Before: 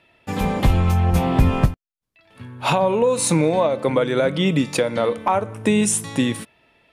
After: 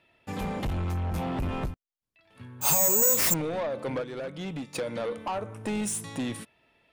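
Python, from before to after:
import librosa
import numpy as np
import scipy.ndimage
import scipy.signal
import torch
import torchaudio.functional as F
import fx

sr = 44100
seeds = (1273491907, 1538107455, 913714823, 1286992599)

y = 10.0 ** (-18.5 / 20.0) * np.tanh(x / 10.0 ** (-18.5 / 20.0))
y = fx.resample_bad(y, sr, factor=6, down='none', up='zero_stuff', at=(2.61, 3.34))
y = fx.upward_expand(y, sr, threshold_db=-32.0, expansion=1.5, at=(4.01, 4.74), fade=0.02)
y = y * 10.0 ** (-7.5 / 20.0)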